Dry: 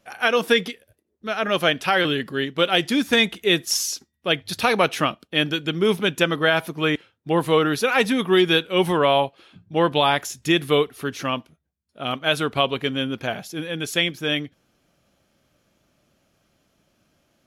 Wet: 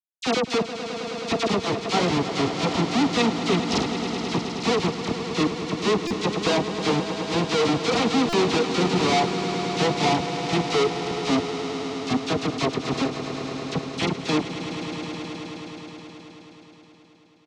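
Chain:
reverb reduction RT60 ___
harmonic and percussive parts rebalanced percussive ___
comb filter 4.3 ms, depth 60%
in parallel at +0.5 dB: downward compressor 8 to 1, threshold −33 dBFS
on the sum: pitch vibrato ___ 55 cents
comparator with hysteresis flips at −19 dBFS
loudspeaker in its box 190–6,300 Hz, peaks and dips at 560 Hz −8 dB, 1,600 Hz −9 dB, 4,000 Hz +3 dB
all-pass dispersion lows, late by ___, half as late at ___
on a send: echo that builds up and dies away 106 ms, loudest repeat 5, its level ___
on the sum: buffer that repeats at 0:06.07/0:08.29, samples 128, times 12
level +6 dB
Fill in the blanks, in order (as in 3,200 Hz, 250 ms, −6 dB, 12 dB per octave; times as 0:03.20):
1.2 s, −12 dB, 1 Hz, 45 ms, 1,700 Hz, −12.5 dB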